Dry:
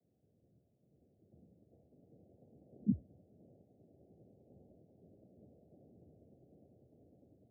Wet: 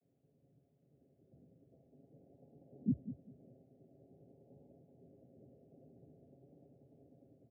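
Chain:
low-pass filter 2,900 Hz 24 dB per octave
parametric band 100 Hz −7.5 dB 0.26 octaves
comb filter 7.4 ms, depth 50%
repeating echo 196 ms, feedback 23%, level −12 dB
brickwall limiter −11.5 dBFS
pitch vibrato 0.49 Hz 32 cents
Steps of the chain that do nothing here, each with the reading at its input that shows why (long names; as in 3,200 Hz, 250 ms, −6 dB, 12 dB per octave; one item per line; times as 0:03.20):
low-pass filter 2,900 Hz: nothing at its input above 480 Hz
brickwall limiter −11.5 dBFS: peak of its input −23.5 dBFS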